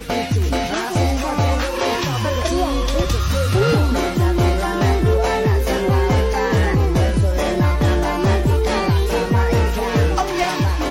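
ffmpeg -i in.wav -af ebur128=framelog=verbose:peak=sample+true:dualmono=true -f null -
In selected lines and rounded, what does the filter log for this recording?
Integrated loudness:
  I:         -15.3 LUFS
  Threshold: -25.3 LUFS
Loudness range:
  LRA:         1.8 LU
  Threshold: -35.1 LUFS
  LRA low:   -16.3 LUFS
  LRA high:  -14.5 LUFS
Sample peak:
  Peak:       -7.7 dBFS
True peak:
  Peak:       -7.7 dBFS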